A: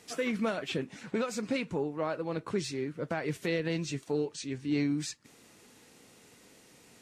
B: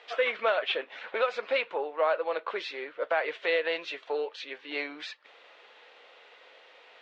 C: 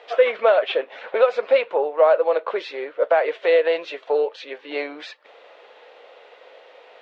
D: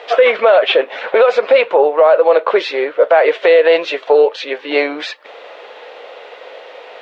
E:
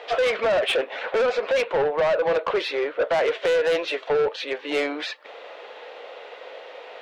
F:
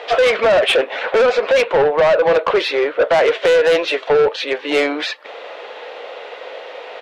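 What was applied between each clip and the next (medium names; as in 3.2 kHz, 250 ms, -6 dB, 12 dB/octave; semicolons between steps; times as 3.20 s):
elliptic band-pass 530–3500 Hz, stop band 70 dB; trim +8.5 dB
peaking EQ 550 Hz +11 dB 1.6 oct; trim +1.5 dB
loudness maximiser +13.5 dB; trim -1 dB
saturation -12 dBFS, distortion -10 dB; trim -5.5 dB
resampled via 32 kHz; trim +8 dB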